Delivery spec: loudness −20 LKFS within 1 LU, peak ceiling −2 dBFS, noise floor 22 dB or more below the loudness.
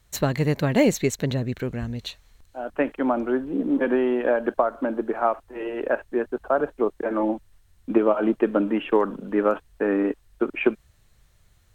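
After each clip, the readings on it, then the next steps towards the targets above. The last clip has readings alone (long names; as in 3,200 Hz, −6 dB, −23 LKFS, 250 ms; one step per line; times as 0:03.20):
integrated loudness −24.5 LKFS; sample peak −7.0 dBFS; target loudness −20.0 LKFS
→ level +4.5 dB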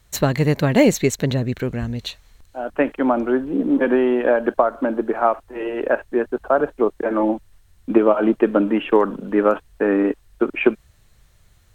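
integrated loudness −20.0 LKFS; sample peak −2.5 dBFS; background noise floor −55 dBFS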